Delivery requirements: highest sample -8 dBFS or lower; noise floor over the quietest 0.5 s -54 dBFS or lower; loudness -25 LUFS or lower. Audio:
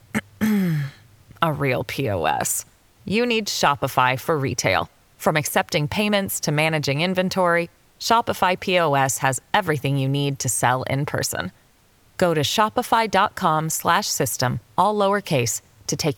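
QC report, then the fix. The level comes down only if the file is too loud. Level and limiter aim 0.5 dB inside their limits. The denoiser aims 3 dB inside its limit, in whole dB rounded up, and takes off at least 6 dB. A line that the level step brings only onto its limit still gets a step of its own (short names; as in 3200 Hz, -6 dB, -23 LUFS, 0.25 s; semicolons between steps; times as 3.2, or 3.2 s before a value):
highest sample -4.5 dBFS: fail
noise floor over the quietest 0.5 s -57 dBFS: OK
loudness -21.0 LUFS: fail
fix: gain -4.5 dB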